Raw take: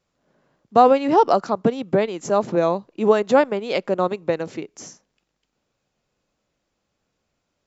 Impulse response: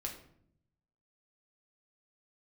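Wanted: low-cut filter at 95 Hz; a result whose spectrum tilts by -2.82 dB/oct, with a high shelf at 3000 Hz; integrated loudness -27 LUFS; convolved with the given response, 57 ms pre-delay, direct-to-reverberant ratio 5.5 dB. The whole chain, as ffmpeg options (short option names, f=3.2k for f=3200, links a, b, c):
-filter_complex "[0:a]highpass=95,highshelf=f=3k:g=-3.5,asplit=2[a][b];[1:a]atrim=start_sample=2205,adelay=57[c];[b][c]afir=irnorm=-1:irlink=0,volume=-5dB[d];[a][d]amix=inputs=2:normalize=0,volume=-8dB"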